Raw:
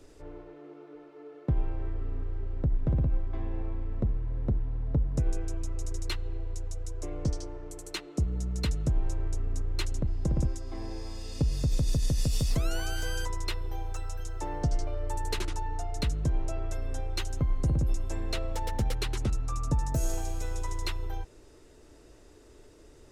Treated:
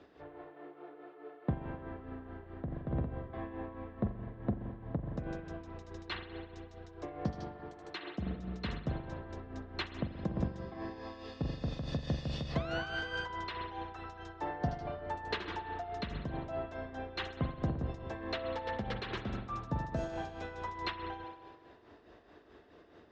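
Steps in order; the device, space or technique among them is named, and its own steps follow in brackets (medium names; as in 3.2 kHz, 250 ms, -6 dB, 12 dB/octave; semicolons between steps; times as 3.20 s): combo amplifier with spring reverb and tremolo (spring tank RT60 1.5 s, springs 42 ms, chirp 25 ms, DRR 5.5 dB; tremolo 4.7 Hz, depth 56%; cabinet simulation 100–4100 Hz, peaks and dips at 130 Hz -5 dB, 200 Hz +5 dB, 720 Hz +8 dB, 1.1 kHz +6 dB, 1.7 kHz +8 dB, 3.4 kHz +3 dB); trim -2 dB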